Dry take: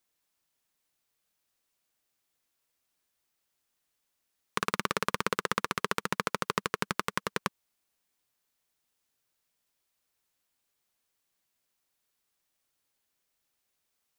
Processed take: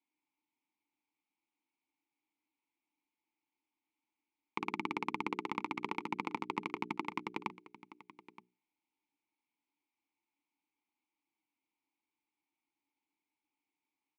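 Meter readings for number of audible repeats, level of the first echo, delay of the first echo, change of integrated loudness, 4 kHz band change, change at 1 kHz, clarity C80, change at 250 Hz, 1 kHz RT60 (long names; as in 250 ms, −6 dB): 1, −17.5 dB, 922 ms, −7.0 dB, −13.0 dB, −6.0 dB, no reverb audible, −1.5 dB, no reverb audible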